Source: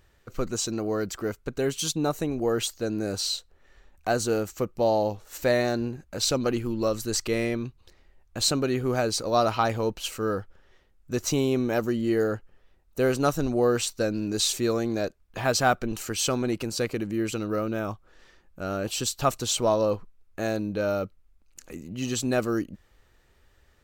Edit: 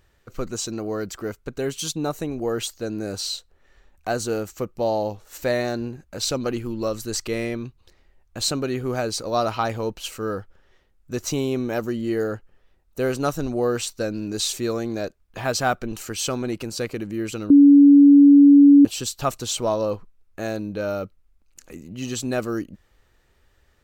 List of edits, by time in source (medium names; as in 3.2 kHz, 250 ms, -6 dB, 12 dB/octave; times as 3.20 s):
17.50–18.85 s: bleep 284 Hz -7 dBFS